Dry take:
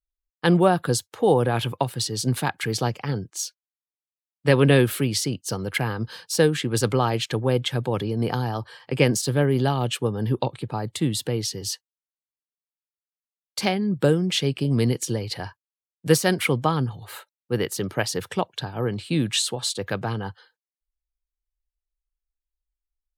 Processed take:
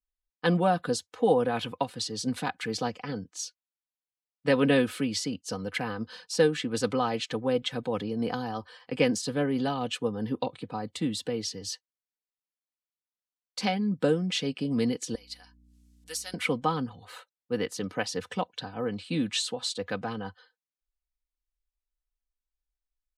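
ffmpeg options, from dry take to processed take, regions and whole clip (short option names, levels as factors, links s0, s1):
-filter_complex "[0:a]asettb=1/sr,asplit=3[s0][s1][s2];[s0]atrim=end=15.154[s3];[s1]atrim=start=15.15:end=16.34,asetpts=PTS-STARTPTS,afade=t=in:d=0.004:c=qsin,afade=t=out:st=1.186:d=0.004:c=qsin,acompressor=mode=upward:threshold=0.01:ratio=2.5:attack=3.2:release=140:knee=2.83:detection=peak,aderivative,aeval=exprs='val(0)+0.00224*(sin(2*PI*60*n/s)+sin(2*PI*2*60*n/s)/2+sin(2*PI*3*60*n/s)/3+sin(2*PI*4*60*n/s)/4+sin(2*PI*5*60*n/s)/5)':c=same[s4];[s2]atrim=start=16.336[s5];[s3][s4]acrossfade=d=0.004:c1=hsin:c2=qsin[s6];[s6][s5]acrossfade=d=0.004:c1=qsin:c2=hsin,lowpass=7400,aecho=1:1:4:0.67,volume=0.473"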